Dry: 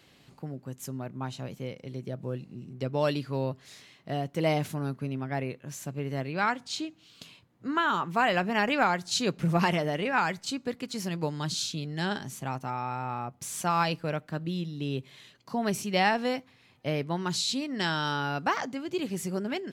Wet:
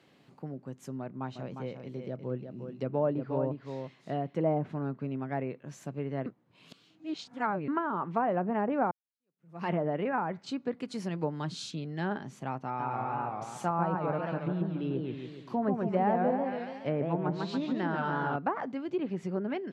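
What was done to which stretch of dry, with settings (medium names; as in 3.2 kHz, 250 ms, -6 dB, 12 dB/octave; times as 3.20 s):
1.00–4.39 s: delay 355 ms -7 dB
6.26–7.68 s: reverse
8.91–9.71 s: fade in exponential
10.74–11.71 s: peaking EQ 10 kHz +14 dB
12.65–18.36 s: modulated delay 141 ms, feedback 55%, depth 195 cents, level -3.5 dB
whole clip: treble shelf 2.5 kHz -12 dB; low-pass that closes with the level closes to 920 Hz, closed at -24 dBFS; high-pass 150 Hz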